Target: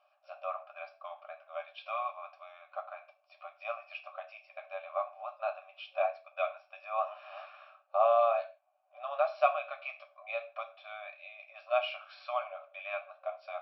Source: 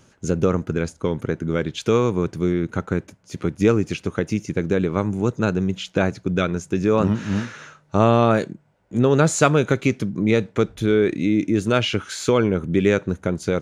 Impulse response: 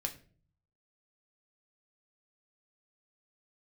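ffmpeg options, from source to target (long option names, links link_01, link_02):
-filter_complex "[1:a]atrim=start_sample=2205,afade=type=out:start_time=0.22:duration=0.01,atrim=end_sample=10143[link_01];[0:a][link_01]afir=irnorm=-1:irlink=0,afftfilt=real='re*between(b*sr/4096,550,5700)':imag='im*between(b*sr/4096,550,5700)':win_size=4096:overlap=0.75,asplit=3[link_02][link_03][link_04];[link_02]bandpass=frequency=730:width_type=q:width=8,volume=0dB[link_05];[link_03]bandpass=frequency=1090:width_type=q:width=8,volume=-6dB[link_06];[link_04]bandpass=frequency=2440:width_type=q:width=8,volume=-9dB[link_07];[link_05][link_06][link_07]amix=inputs=3:normalize=0,adynamicequalizer=threshold=0.01:dfrequency=710:dqfactor=0.8:tfrequency=710:tqfactor=0.8:attack=5:release=100:ratio=0.375:range=2:mode=cutabove:tftype=bell"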